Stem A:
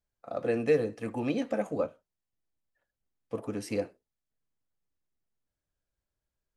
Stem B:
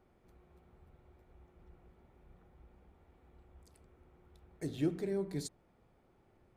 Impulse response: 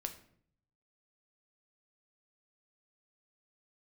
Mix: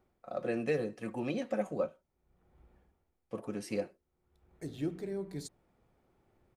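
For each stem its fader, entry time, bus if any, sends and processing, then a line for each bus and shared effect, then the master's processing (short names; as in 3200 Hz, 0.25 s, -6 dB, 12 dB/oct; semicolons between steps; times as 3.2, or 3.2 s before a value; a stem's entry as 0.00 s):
-4.0 dB, 0.00 s, no send, comb 5.4 ms, depth 41%
-2.5 dB, 0.00 s, no send, auto duck -23 dB, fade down 0.55 s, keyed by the first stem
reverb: off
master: dry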